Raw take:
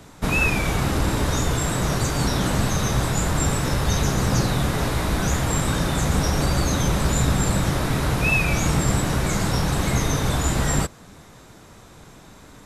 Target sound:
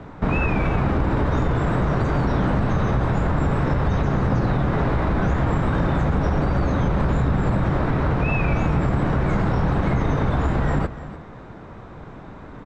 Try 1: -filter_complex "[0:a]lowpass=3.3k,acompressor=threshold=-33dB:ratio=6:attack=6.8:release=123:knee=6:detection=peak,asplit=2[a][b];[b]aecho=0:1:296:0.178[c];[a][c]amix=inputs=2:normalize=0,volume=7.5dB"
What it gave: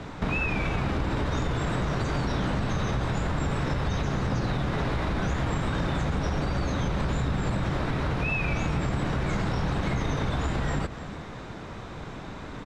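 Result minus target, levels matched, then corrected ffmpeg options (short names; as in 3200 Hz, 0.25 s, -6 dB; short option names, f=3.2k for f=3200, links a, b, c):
4000 Hz band +10.0 dB; compressor: peak gain reduction +7 dB
-filter_complex "[0:a]lowpass=1.6k,acompressor=threshold=-24.5dB:ratio=6:attack=6.8:release=123:knee=6:detection=peak,asplit=2[a][b];[b]aecho=0:1:296:0.178[c];[a][c]amix=inputs=2:normalize=0,volume=7.5dB"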